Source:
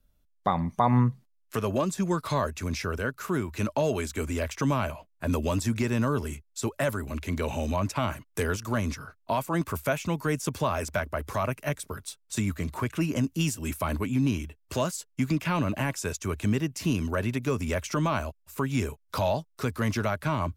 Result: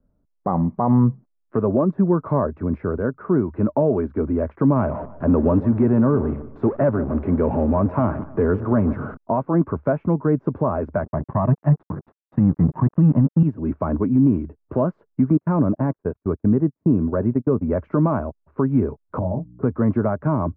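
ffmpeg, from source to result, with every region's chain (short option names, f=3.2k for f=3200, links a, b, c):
-filter_complex "[0:a]asettb=1/sr,asplit=3[a][b][c];[a]atrim=end=4.764[d];[b]atrim=start=4.76:end=9.17,asetpts=PTS-STARTPTS,afade=t=in:d=0.004:c=qsin,afade=t=out:st=4.406:d=0.004:c=qsin,aeval=exprs='val(0)+0.5*0.0237*sgn(val(0))':c=same,equalizer=f=5.8k:t=o:w=2.2:g=5.5,asplit=2[e][f];[f]adelay=150,lowpass=f=2.7k:p=1,volume=-16dB,asplit=2[g][h];[h]adelay=150,lowpass=f=2.7k:p=1,volume=0.39,asplit=2[i][j];[j]adelay=150,lowpass=f=2.7k:p=1,volume=0.39[k];[e][g][i][k]amix=inputs=4:normalize=0,atrim=end_sample=194481[l];[c]atrim=start=9.166[m];[d][l]acrossfade=d=0.004:c1=hsin:c2=qsin[n];[n][m]acrossfade=d=0.004:c1=qsin:c2=hsin,asettb=1/sr,asplit=3[o][p][q];[o]atrim=end=11.034[r];[p]atrim=start=11.03:end=13.43,asetpts=PTS-STARTPTS,afade=t=in:d=0.004:c=qsin,afade=t=out:st=2.396:d=0.004:c=qsin,equalizer=f=150:w=2.9:g=12,aecho=1:1:1.1:0.9,atrim=end_sample=105840,aeval=exprs='sgn(val(0))*max(abs(val(0))-0.02,0)':c=same[s];[q]atrim=start=13.426[t];[r][s]acrossfade=d=0.004:c1=hsin:c2=qsin[u];[u][t]acrossfade=d=0.004:c1=qsin:c2=hsin,asettb=1/sr,asplit=3[v][w][x];[v]atrim=end=15.374[y];[w]atrim=start=15.37:end=17.72,asetpts=PTS-STARTPTS,afade=t=in:d=0.004:c=qsin,afade=t=out:st=2.346:d=0.004:c=qsin,agate=range=-36dB:threshold=-32dB:ratio=16:release=100:detection=peak,asuperstop=centerf=4500:order=20:qfactor=1.1,aemphasis=mode=reproduction:type=75kf[z];[x]atrim=start=17.716[aa];[y][z]acrossfade=d=0.004:c1=hsin:c2=qsin[ab];[ab][aa]acrossfade=d=0.004:c1=qsin:c2=hsin,asettb=1/sr,asplit=3[ac][ad][ae];[ac]atrim=end=19.194[af];[ad]atrim=start=19.19:end=19.63,asetpts=PTS-STARTPTS,afade=t=in:d=0.004:c=qsin,afade=t=out:st=0.436:d=0.004:c=qsin,aeval=exprs='val(0)+0.00355*(sin(2*PI*60*n/s)+sin(2*PI*2*60*n/s)/2+sin(2*PI*3*60*n/s)/3+sin(2*PI*4*60*n/s)/4+sin(2*PI*5*60*n/s)/5)':c=same,bandpass=f=120:t=q:w=0.53,asplit=2[ag][ah];[ah]adelay=23,volume=-5dB[ai];[ag][ai]amix=inputs=2:normalize=0,atrim=end_sample=19404[aj];[ae]atrim=start=19.626[ak];[af][aj]acrossfade=d=0.004:c1=hsin:c2=qsin[al];[al][ak]acrossfade=d=0.004:c1=qsin:c2=hsin,lowpass=f=1.4k:w=0.5412,lowpass=f=1.4k:w=1.3066,equalizer=f=280:w=0.33:g=14,alimiter=level_in=4.5dB:limit=-1dB:release=50:level=0:latency=1,volume=-7.5dB"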